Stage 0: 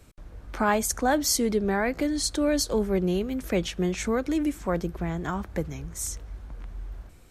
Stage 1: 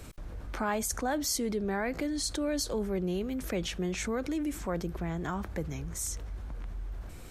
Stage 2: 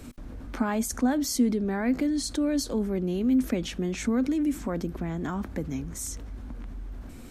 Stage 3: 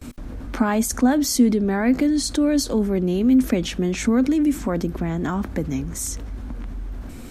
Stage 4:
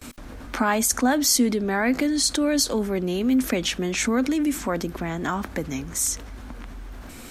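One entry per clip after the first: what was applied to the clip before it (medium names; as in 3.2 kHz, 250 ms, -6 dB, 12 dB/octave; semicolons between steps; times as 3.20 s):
level flattener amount 50%; trim -8.5 dB
peaking EQ 250 Hz +14.5 dB 0.47 oct
gate with hold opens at -38 dBFS; trim +7 dB
bass shelf 480 Hz -12 dB; trim +4.5 dB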